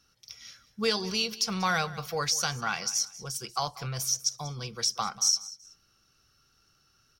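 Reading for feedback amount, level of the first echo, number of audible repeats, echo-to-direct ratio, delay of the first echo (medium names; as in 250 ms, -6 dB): 27%, -18.0 dB, 2, -17.5 dB, 189 ms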